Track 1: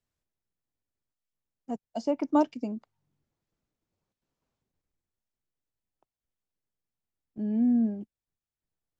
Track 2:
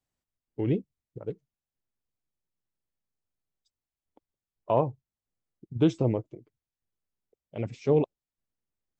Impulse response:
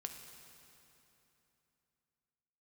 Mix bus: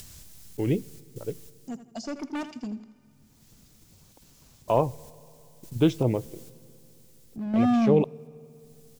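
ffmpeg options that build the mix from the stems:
-filter_complex "[0:a]bass=f=250:g=11,treble=f=4k:g=15,acompressor=mode=upward:threshold=-28dB:ratio=2.5,asoftclip=type=hard:threshold=-22.5dB,volume=1.5dB,asplit=3[a][b][c];[b]volume=-20.5dB[d];[c]volume=-20.5dB[e];[1:a]acrusher=bits=11:mix=0:aa=0.000001,volume=0dB,asplit=3[f][g][h];[g]volume=-13dB[i];[h]apad=whole_len=396790[j];[a][j]sidechaingate=range=-10dB:threshold=-55dB:ratio=16:detection=peak[k];[2:a]atrim=start_sample=2205[l];[d][i]amix=inputs=2:normalize=0[m];[m][l]afir=irnorm=-1:irlink=0[n];[e]aecho=0:1:82|164|246|328|410:1|0.32|0.102|0.0328|0.0105[o];[k][f][n][o]amix=inputs=4:normalize=0,equalizer=f=2.9k:w=0.56:g=4"

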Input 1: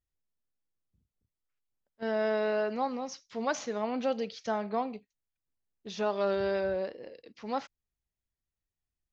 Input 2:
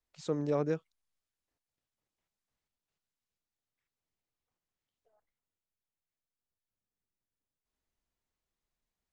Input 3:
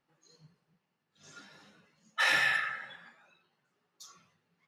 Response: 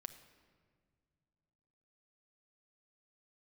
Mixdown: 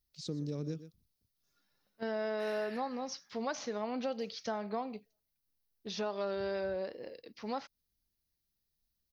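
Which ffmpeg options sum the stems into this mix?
-filter_complex "[0:a]volume=0dB[a];[1:a]firequalizer=gain_entry='entry(220,0);entry(730,-20);entry(4000,1)':delay=0.05:min_phase=1,volume=2dB,asplit=3[b][c][d];[c]volume=-16dB[e];[2:a]bass=f=250:g=-1,treble=f=4k:g=3,adelay=200,volume=-19dB[f];[d]apad=whole_len=214796[g];[f][g]sidechaincompress=threshold=-49dB:ratio=8:attack=16:release=1110[h];[e]aecho=0:1:122:1[i];[a][b][h][i]amix=inputs=4:normalize=0,aexciter=amount=1.1:drive=5.2:freq=4.2k,acompressor=threshold=-35dB:ratio=2.5"

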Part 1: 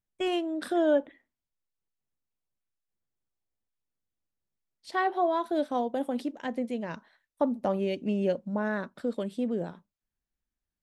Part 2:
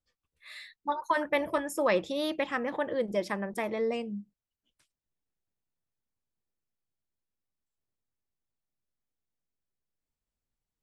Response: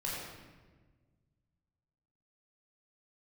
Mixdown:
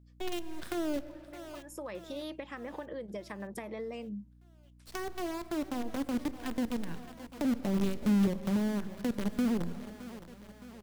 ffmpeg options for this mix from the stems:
-filter_complex "[0:a]asubboost=boost=4:cutoff=230,acrusher=bits=5:dc=4:mix=0:aa=0.000001,volume=-4dB,asplit=4[a][b][c][d];[b]volume=-18.5dB[e];[c]volume=-18.5dB[f];[1:a]acompressor=threshold=-37dB:ratio=6,volume=0.5dB[g];[d]apad=whole_len=477555[h];[g][h]sidechaincompress=threshold=-51dB:ratio=8:attack=16:release=552[i];[2:a]atrim=start_sample=2205[j];[e][j]afir=irnorm=-1:irlink=0[k];[f]aecho=0:1:616|1232|1848|2464|3080|3696|4312|4928|5544:1|0.59|0.348|0.205|0.121|0.0715|0.0422|0.0249|0.0147[l];[a][i][k][l]amix=inputs=4:normalize=0,acrossover=split=370[m][n];[n]acompressor=threshold=-39dB:ratio=6[o];[m][o]amix=inputs=2:normalize=0,aeval=exprs='val(0)+0.00141*(sin(2*PI*60*n/s)+sin(2*PI*2*60*n/s)/2+sin(2*PI*3*60*n/s)/3+sin(2*PI*4*60*n/s)/4+sin(2*PI*5*60*n/s)/5)':c=same"

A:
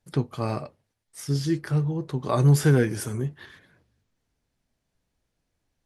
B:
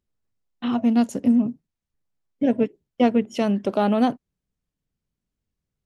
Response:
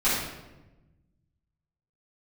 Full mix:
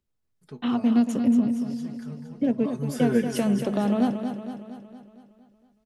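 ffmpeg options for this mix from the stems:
-filter_complex "[0:a]aecho=1:1:4.7:0.93,adelay=350,volume=-6.5dB,afade=t=in:st=2.73:d=0.63:silence=0.266073,asplit=2[a][b];[b]volume=-9dB[c];[1:a]acrossover=split=270[d][e];[e]acompressor=threshold=-26dB:ratio=6[f];[d][f]amix=inputs=2:normalize=0,volume=-0.5dB,asplit=2[g][h];[h]volume=-8dB[i];[c][i]amix=inputs=2:normalize=0,aecho=0:1:231|462|693|924|1155|1386|1617|1848:1|0.55|0.303|0.166|0.0915|0.0503|0.0277|0.0152[j];[a][g][j]amix=inputs=3:normalize=0"

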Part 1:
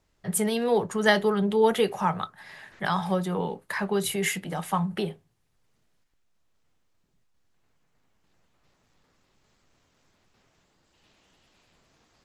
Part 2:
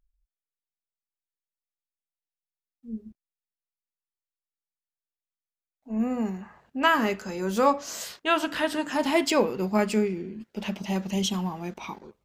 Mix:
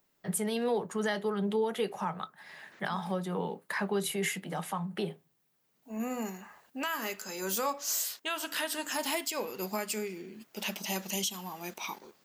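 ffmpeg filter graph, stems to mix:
-filter_complex "[0:a]highpass=f=150:w=0.5412,highpass=f=150:w=1.3066,volume=-2.5dB[a];[1:a]aemphasis=mode=production:type=riaa,volume=-2dB[b];[a][b]amix=inputs=2:normalize=0,alimiter=limit=-21dB:level=0:latency=1:release=437"

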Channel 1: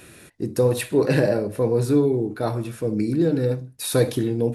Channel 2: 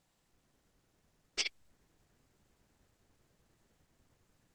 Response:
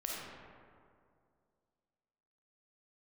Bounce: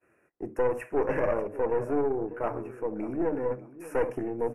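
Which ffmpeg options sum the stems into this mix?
-filter_complex "[0:a]agate=range=-33dB:threshold=-38dB:ratio=3:detection=peak,volume=0dB,asplit=2[a][b];[b]volume=-16.5dB[c];[1:a]equalizer=f=280:w=0.57:g=9,volume=-13.5dB[d];[c]aecho=0:1:592|1184|1776|2368:1|0.27|0.0729|0.0197[e];[a][d][e]amix=inputs=3:normalize=0,acrossover=split=340 2000:gain=0.2 1 0.0891[f][g][h];[f][g][h]amix=inputs=3:normalize=0,aeval=exprs='(tanh(10*val(0)+0.65)-tanh(0.65))/10':c=same,asuperstop=centerf=3900:order=8:qfactor=1.5"

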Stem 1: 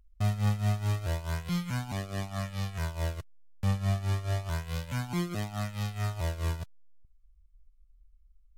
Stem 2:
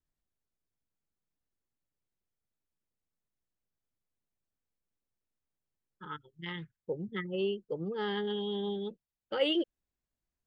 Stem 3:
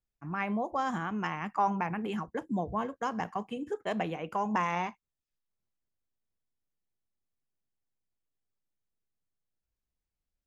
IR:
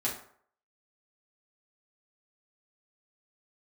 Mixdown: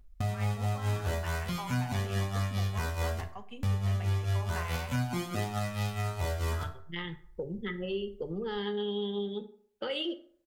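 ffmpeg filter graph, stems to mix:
-filter_complex "[0:a]volume=0.5dB,asplit=2[a][b];[b]volume=-3.5dB[c];[1:a]acrossover=split=190|3000[d][e][f];[e]acompressor=threshold=-36dB:ratio=6[g];[d][g][f]amix=inputs=3:normalize=0,adelay=500,volume=1.5dB,asplit=2[h][i];[i]volume=-11.5dB[j];[2:a]equalizer=f=3.2k:w=0.64:g=9.5,volume=-14dB,asplit=2[k][l];[l]volume=-13.5dB[m];[a][h]amix=inputs=2:normalize=0,acompressor=threshold=-33dB:ratio=6,volume=0dB[n];[3:a]atrim=start_sample=2205[o];[c][j][m]amix=inputs=3:normalize=0[p];[p][o]afir=irnorm=-1:irlink=0[q];[k][n][q]amix=inputs=3:normalize=0,alimiter=limit=-21.5dB:level=0:latency=1:release=424"

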